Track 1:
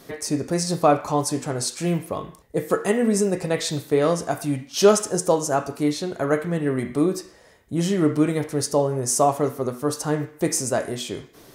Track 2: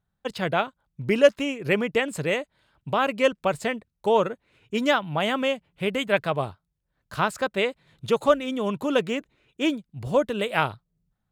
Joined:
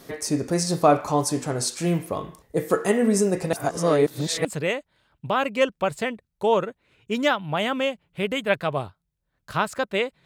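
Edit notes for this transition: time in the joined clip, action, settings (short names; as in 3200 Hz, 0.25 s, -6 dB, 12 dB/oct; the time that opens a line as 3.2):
track 1
3.53–4.45 reverse
4.45 switch to track 2 from 2.08 s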